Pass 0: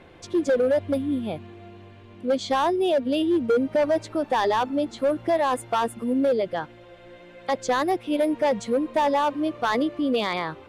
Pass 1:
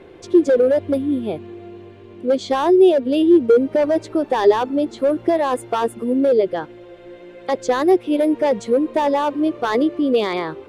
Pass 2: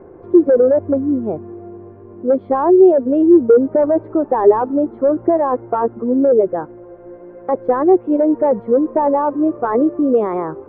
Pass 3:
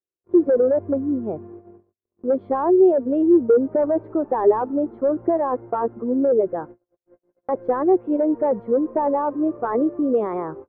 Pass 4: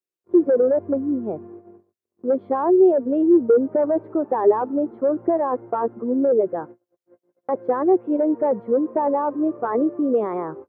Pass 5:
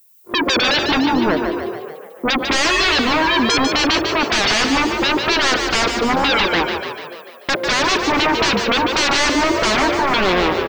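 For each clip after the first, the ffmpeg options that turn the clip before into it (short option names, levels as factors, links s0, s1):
-af "equalizer=f=390:w=2.1:g=12,volume=1.12"
-af "lowpass=f=1300:w=0.5412,lowpass=f=1300:w=1.3066,volume=1.41"
-af "agate=range=0.00178:threshold=0.0251:ratio=16:detection=peak,volume=0.531"
-af "highpass=120"
-filter_complex "[0:a]aemphasis=mode=production:type=riaa,aeval=exprs='0.299*sin(PI/2*8.91*val(0)/0.299)':c=same,asplit=9[s0][s1][s2][s3][s4][s5][s6][s7][s8];[s1]adelay=147,afreqshift=37,volume=0.501[s9];[s2]adelay=294,afreqshift=74,volume=0.292[s10];[s3]adelay=441,afreqshift=111,volume=0.168[s11];[s4]adelay=588,afreqshift=148,volume=0.0977[s12];[s5]adelay=735,afreqshift=185,volume=0.0569[s13];[s6]adelay=882,afreqshift=222,volume=0.0327[s14];[s7]adelay=1029,afreqshift=259,volume=0.0191[s15];[s8]adelay=1176,afreqshift=296,volume=0.0111[s16];[s0][s9][s10][s11][s12][s13][s14][s15][s16]amix=inputs=9:normalize=0,volume=0.668"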